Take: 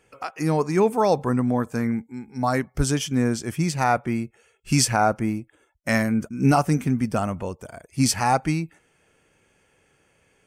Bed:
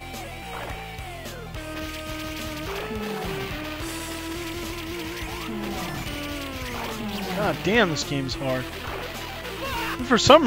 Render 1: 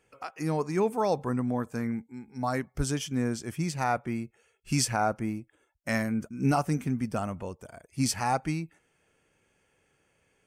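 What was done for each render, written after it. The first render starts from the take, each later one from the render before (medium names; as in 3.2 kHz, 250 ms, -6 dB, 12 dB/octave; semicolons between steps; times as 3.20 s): trim -7 dB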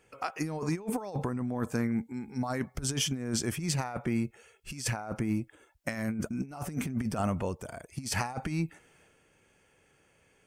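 transient shaper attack +1 dB, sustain +5 dB; compressor with a negative ratio -31 dBFS, ratio -0.5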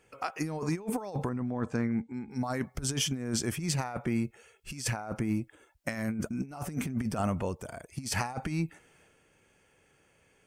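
1.29–2.31 s: distance through air 100 m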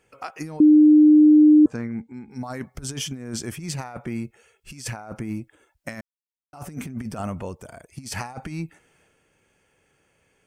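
0.60–1.66 s: bleep 303 Hz -9 dBFS; 6.01–6.53 s: mute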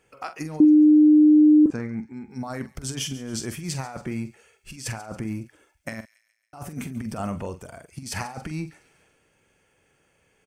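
doubling 45 ms -11 dB; feedback echo behind a high-pass 139 ms, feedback 51%, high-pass 2.7 kHz, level -16 dB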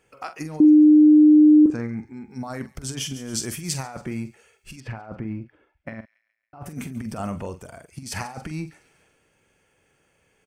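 0.60–2.19 s: flutter echo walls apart 7.3 m, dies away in 0.22 s; 3.16–3.83 s: treble shelf 4.3 kHz +7.5 dB; 4.80–6.66 s: distance through air 400 m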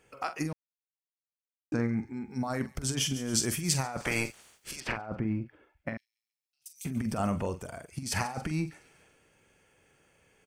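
0.53–1.72 s: mute; 4.00–4.96 s: spectral peaks clipped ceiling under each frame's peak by 25 dB; 5.97–6.85 s: inverse Chebyshev high-pass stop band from 1.2 kHz, stop band 60 dB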